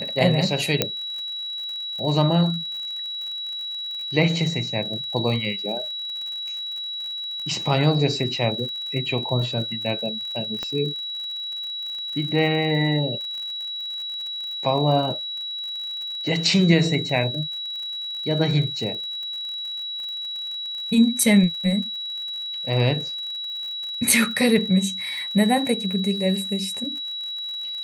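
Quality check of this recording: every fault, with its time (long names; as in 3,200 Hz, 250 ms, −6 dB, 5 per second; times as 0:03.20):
surface crackle 57 per second −32 dBFS
whistle 3,900 Hz −28 dBFS
0:00.82: click −3 dBFS
0:10.63: click −15 dBFS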